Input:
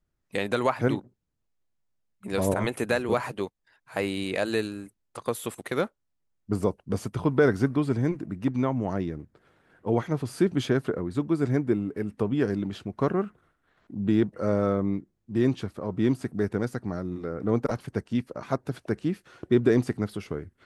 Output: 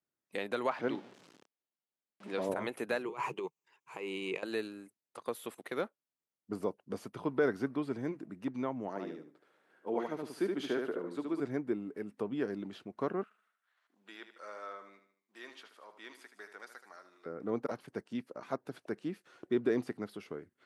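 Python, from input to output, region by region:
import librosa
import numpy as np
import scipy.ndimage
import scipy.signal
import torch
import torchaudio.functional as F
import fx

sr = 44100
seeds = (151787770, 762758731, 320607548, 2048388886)

y = fx.chain(x, sr, fx.zero_step(step_db=-38.0),
    fx.bandpass_edges(low_hz=150.0, high_hz=5700.0),
    fx.peak_eq(hz=3100.0, db=2.5, octaves=0.36), at=(0.71, 2.49))
y = fx.chain(y, sr, fx.over_compress(threshold_db=-32.0, ratio=-1.0),
    fx.ripple_eq(per_octave=0.73, db=12), at=(3.05, 4.43))
y = fx.chain(y, sr, fx.highpass(hz=230.0, slope=12),
    fx.echo_feedback(ms=73, feedback_pct=23, wet_db=-4.0), at=(8.88, 11.4))
y = fx.chain(y, sr, fx.highpass(hz=1200.0, slope=12),
    fx.echo_feedback(ms=76, feedback_pct=44, wet_db=-10.0), at=(13.23, 17.26))
y = scipy.signal.sosfilt(scipy.signal.butter(2, 240.0, 'highpass', fs=sr, output='sos'), y)
y = fx.dynamic_eq(y, sr, hz=7700.0, q=1.2, threshold_db=-57.0, ratio=4.0, max_db=-7)
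y = F.gain(torch.from_numpy(y), -8.0).numpy()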